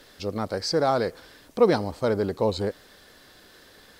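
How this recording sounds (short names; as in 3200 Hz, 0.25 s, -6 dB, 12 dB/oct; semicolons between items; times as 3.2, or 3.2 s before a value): noise floor -53 dBFS; spectral tilt -4.5 dB/oct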